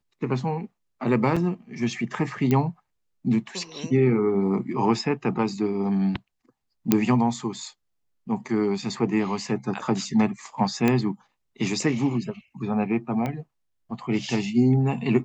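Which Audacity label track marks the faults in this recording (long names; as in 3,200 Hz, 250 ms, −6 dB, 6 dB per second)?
1.360000	1.370000	drop-out 5.4 ms
2.510000	2.510000	click −11 dBFS
6.920000	6.920000	click −4 dBFS
10.880000	10.880000	click −9 dBFS
13.260000	13.260000	click −16 dBFS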